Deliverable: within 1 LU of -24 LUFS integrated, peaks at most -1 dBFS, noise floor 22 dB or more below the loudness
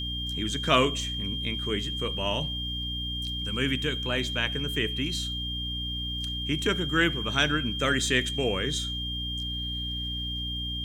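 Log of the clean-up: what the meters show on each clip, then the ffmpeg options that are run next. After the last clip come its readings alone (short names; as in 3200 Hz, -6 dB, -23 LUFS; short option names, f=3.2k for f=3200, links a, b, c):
hum 60 Hz; harmonics up to 300 Hz; hum level -33 dBFS; steady tone 3200 Hz; tone level -32 dBFS; loudness -28.0 LUFS; peak -9.0 dBFS; loudness target -24.0 LUFS
-> -af "bandreject=f=60:t=h:w=6,bandreject=f=120:t=h:w=6,bandreject=f=180:t=h:w=6,bandreject=f=240:t=h:w=6,bandreject=f=300:t=h:w=6"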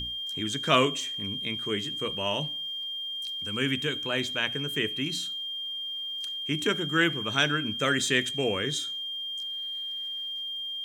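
hum none; steady tone 3200 Hz; tone level -32 dBFS
-> -af "bandreject=f=3.2k:w=30"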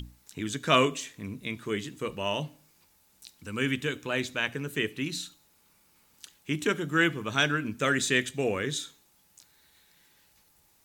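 steady tone none; loudness -29.0 LUFS; peak -8.5 dBFS; loudness target -24.0 LUFS
-> -af "volume=5dB"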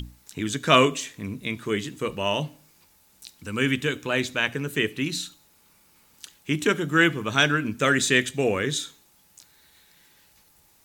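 loudness -24.0 LUFS; peak -3.5 dBFS; noise floor -60 dBFS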